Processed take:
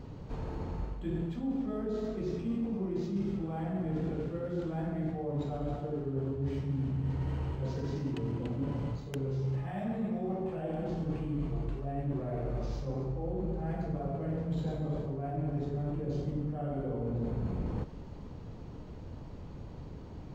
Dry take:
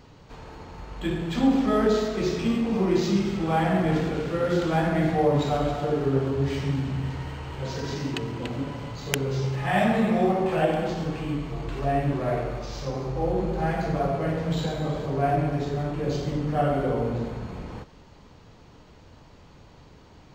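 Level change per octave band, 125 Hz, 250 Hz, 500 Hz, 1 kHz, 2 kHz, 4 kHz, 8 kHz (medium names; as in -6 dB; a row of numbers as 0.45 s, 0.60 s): -6.0 dB, -8.5 dB, -11.5 dB, -15.5 dB, -19.0 dB, -19.0 dB, under -15 dB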